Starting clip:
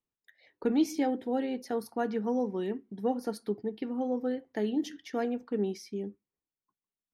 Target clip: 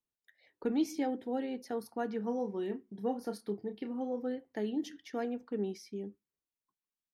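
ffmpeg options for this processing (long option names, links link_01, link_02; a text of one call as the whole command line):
ffmpeg -i in.wav -filter_complex "[0:a]asplit=3[link_01][link_02][link_03];[link_01]afade=type=out:start_time=2.19:duration=0.02[link_04];[link_02]asplit=2[link_05][link_06];[link_06]adelay=30,volume=-8.5dB[link_07];[link_05][link_07]amix=inputs=2:normalize=0,afade=type=in:start_time=2.19:duration=0.02,afade=type=out:start_time=4.22:duration=0.02[link_08];[link_03]afade=type=in:start_time=4.22:duration=0.02[link_09];[link_04][link_08][link_09]amix=inputs=3:normalize=0,volume=-4.5dB" out.wav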